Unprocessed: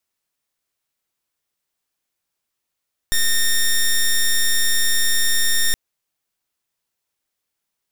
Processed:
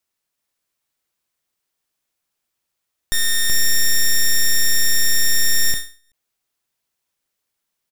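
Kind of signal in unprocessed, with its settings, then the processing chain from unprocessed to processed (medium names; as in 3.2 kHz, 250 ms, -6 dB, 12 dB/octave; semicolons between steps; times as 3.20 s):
pulse 1.83 kHz, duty 9% -16 dBFS 2.62 s
on a send: delay 378 ms -4 dB; on the sum: endings held to a fixed fall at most 160 dB/s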